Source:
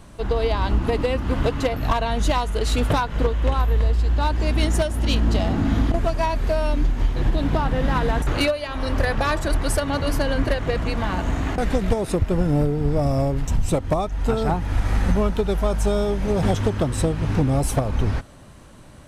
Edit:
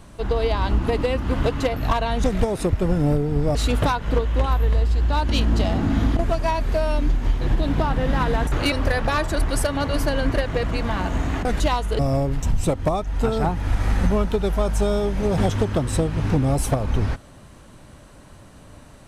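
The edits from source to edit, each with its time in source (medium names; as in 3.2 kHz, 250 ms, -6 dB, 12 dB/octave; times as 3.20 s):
2.24–2.63 s: swap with 11.73–13.04 s
4.37–5.04 s: delete
8.47–8.85 s: delete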